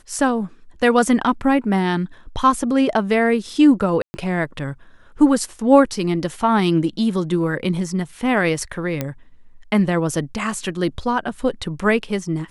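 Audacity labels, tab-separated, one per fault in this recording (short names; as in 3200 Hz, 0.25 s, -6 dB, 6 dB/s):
4.020000	4.140000	gap 0.12 s
9.010000	9.010000	pop -9 dBFS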